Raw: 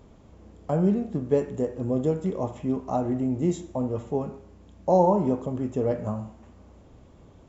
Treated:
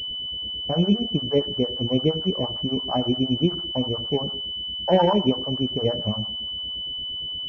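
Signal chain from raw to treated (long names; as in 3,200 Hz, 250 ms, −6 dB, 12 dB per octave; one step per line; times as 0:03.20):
two-band tremolo in antiphase 8.7 Hz, depth 100%, crossover 630 Hz
switching amplifier with a slow clock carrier 3,000 Hz
level +6.5 dB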